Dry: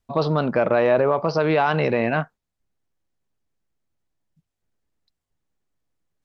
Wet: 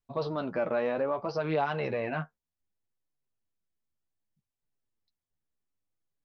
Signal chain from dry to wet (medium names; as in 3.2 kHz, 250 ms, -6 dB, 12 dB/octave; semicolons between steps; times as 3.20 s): flange 0.64 Hz, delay 6.5 ms, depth 6.9 ms, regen +19%; trim -7.5 dB